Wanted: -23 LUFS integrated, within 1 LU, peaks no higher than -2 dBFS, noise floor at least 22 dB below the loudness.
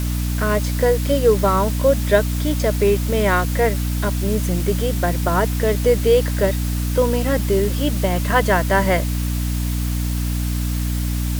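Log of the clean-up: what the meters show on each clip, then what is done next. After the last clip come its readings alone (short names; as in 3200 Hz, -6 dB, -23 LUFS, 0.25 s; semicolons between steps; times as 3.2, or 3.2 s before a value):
hum 60 Hz; harmonics up to 300 Hz; hum level -19 dBFS; noise floor -22 dBFS; noise floor target -42 dBFS; loudness -19.5 LUFS; peak -3.0 dBFS; loudness target -23.0 LUFS
-> notches 60/120/180/240/300 Hz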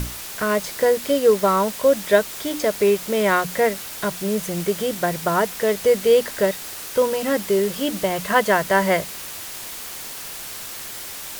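hum none; noise floor -34 dBFS; noise floor target -43 dBFS
-> denoiser 9 dB, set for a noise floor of -34 dBFS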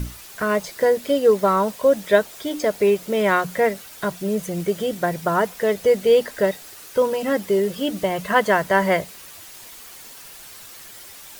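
noise floor -42 dBFS; noise floor target -43 dBFS
-> denoiser 6 dB, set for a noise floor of -42 dBFS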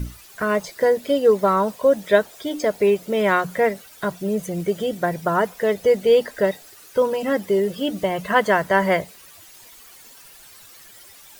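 noise floor -46 dBFS; loudness -21.0 LUFS; peak -3.5 dBFS; loudness target -23.0 LUFS
-> gain -2 dB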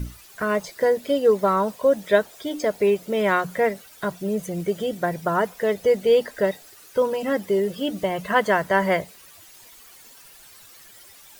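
loudness -23.0 LUFS; peak -5.5 dBFS; noise floor -48 dBFS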